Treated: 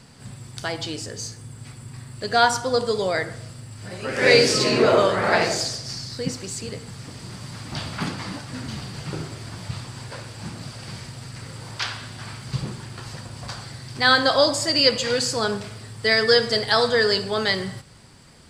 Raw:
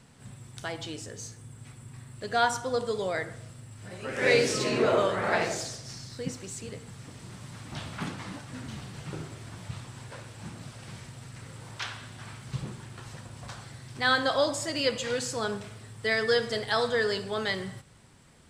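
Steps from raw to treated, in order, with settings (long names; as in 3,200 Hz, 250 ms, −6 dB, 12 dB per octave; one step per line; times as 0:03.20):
parametric band 4,700 Hz +10.5 dB 0.2 octaves
level +7 dB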